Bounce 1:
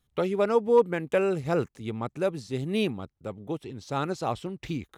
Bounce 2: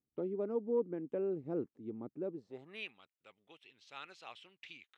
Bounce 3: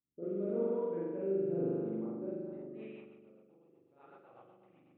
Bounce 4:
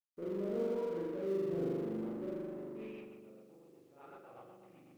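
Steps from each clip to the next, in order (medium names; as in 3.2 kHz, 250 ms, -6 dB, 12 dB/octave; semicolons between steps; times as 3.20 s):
band-pass sweep 300 Hz -> 2.7 kHz, 2.32–2.89 s; trim -5 dB
spring tank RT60 2 s, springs 41 ms, chirp 45 ms, DRR -9 dB; level-controlled noise filter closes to 380 Hz, open at -22.5 dBFS; rotary cabinet horn 0.9 Hz, later 8 Hz, at 2.24 s; trim -5.5 dB
companding laws mixed up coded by mu; trim -3.5 dB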